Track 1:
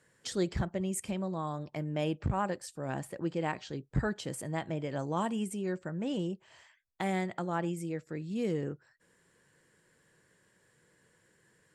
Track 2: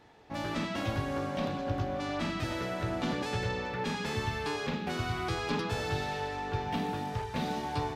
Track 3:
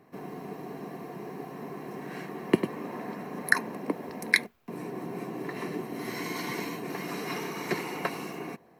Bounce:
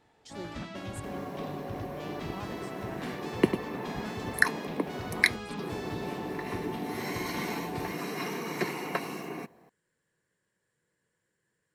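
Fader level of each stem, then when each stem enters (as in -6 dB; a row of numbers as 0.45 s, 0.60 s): -12.0 dB, -7.5 dB, -0.5 dB; 0.00 s, 0.00 s, 0.90 s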